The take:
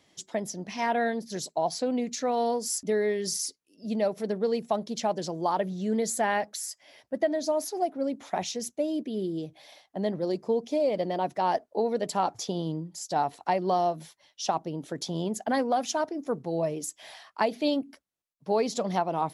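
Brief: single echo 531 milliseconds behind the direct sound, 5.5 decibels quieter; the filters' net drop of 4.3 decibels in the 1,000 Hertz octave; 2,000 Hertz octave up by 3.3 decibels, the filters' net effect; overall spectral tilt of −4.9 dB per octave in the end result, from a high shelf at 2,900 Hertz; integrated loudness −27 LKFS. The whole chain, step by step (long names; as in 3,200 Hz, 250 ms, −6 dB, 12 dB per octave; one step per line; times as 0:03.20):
parametric band 1,000 Hz −7 dB
parametric band 2,000 Hz +8.5 dB
high-shelf EQ 2,900 Hz −7.5 dB
single-tap delay 531 ms −5.5 dB
level +3.5 dB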